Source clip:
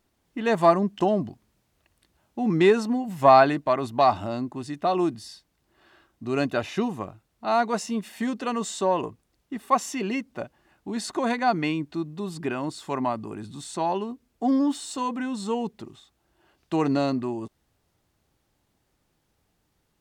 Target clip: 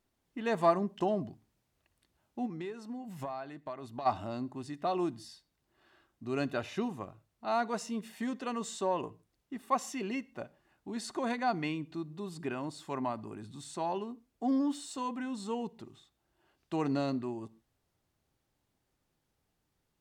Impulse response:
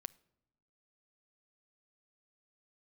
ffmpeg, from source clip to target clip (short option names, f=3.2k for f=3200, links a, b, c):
-filter_complex "[0:a]asplit=3[a][b][c];[a]afade=t=out:st=2.45:d=0.02[d];[b]acompressor=threshold=-30dB:ratio=8,afade=t=in:st=2.45:d=0.02,afade=t=out:st=4.05:d=0.02[e];[c]afade=t=in:st=4.05:d=0.02[f];[d][e][f]amix=inputs=3:normalize=0[g];[1:a]atrim=start_sample=2205,atrim=end_sample=6174,asetrate=39690,aresample=44100[h];[g][h]afir=irnorm=-1:irlink=0,volume=-4.5dB"